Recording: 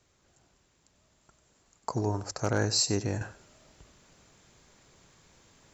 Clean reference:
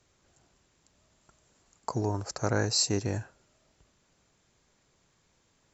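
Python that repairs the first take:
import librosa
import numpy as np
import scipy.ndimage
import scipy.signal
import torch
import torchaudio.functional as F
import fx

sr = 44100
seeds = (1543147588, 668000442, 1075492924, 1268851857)

y = fx.fix_declip(x, sr, threshold_db=-15.5)
y = fx.fix_echo_inverse(y, sr, delay_ms=95, level_db=-16.0)
y = fx.gain(y, sr, db=fx.steps((0.0, 0.0), (3.21, -9.0)))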